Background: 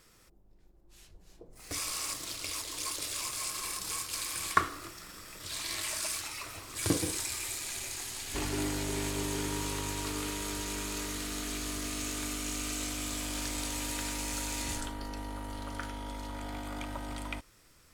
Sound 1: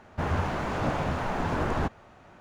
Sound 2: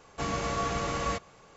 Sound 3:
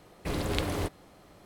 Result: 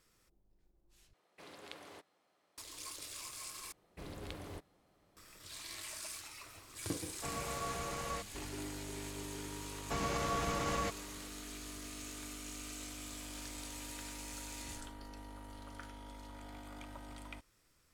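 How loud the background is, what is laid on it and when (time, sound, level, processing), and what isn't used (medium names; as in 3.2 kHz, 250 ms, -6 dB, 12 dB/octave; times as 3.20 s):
background -10.5 dB
1.13 s: replace with 3 -17.5 dB + frequency weighting A
3.72 s: replace with 3 -16 dB
7.04 s: add 2 -9.5 dB + hum notches 50/100/150/200/250/300/350 Hz
9.72 s: add 2 -2.5 dB + peak limiter -24 dBFS
not used: 1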